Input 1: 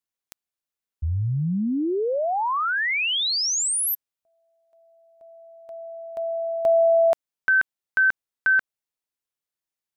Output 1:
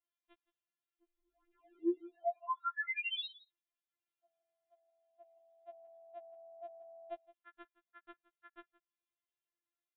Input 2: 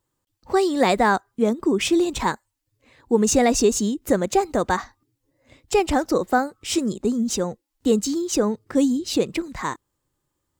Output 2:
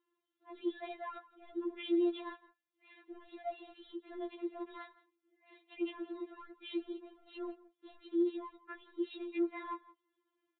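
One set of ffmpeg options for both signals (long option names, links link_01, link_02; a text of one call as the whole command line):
ffmpeg -i in.wav -af "highpass=frequency=190:width=0.5412,highpass=frequency=190:width=1.3066,areverse,acompressor=threshold=-33dB:ratio=12:attack=0.25:release=27:knee=6:detection=rms,areverse,aecho=1:1:168:0.106,aresample=8000,aresample=44100,afftfilt=real='re*4*eq(mod(b,16),0)':imag='im*4*eq(mod(b,16),0)':win_size=2048:overlap=0.75,volume=-1.5dB" out.wav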